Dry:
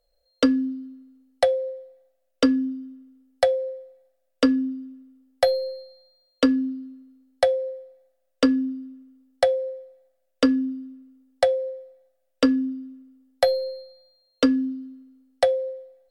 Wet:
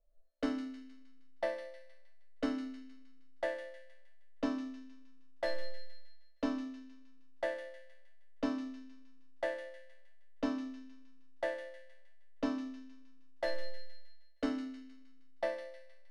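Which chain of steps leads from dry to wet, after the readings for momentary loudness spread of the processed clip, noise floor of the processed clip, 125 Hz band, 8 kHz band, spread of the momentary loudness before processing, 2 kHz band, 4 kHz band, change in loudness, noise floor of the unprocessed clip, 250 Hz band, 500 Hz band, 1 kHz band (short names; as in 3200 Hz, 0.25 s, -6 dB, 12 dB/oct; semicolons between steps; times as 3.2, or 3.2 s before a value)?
20 LU, -52 dBFS, n/a, under -15 dB, 20 LU, -9.5 dB, -17.5 dB, -16.0 dB, -72 dBFS, -16.0 dB, -16.5 dB, -14.5 dB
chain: low-pass opened by the level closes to 1600 Hz, open at -19 dBFS; tilt -2 dB/oct; soft clip -15 dBFS, distortion -11 dB; resonator bank A3 sus4, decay 0.54 s; thin delay 0.156 s, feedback 48%, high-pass 2100 Hz, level -8.5 dB; gain +12.5 dB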